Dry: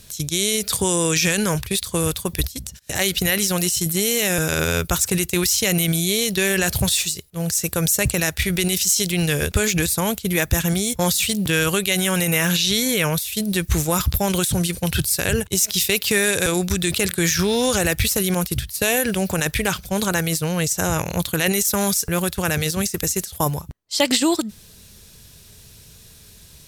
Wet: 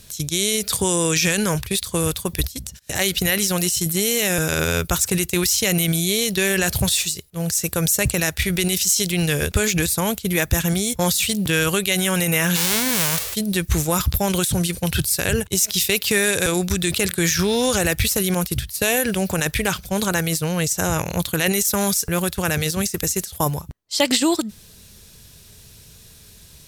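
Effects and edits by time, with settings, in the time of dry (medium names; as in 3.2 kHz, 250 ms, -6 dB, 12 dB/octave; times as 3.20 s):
12.55–13.34 s: formants flattened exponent 0.1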